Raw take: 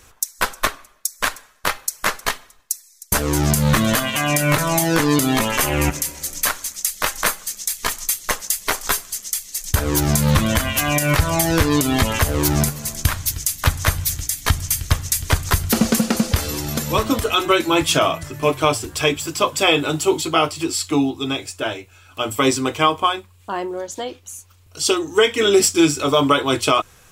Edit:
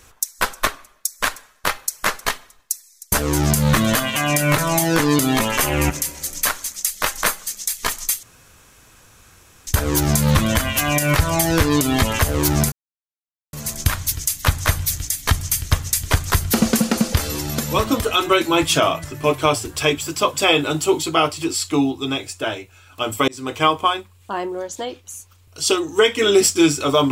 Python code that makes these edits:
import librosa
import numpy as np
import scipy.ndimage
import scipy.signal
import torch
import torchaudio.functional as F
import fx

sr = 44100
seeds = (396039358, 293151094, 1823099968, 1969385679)

y = fx.edit(x, sr, fx.room_tone_fill(start_s=8.23, length_s=1.44),
    fx.insert_silence(at_s=12.72, length_s=0.81),
    fx.fade_in_span(start_s=22.47, length_s=0.35), tone=tone)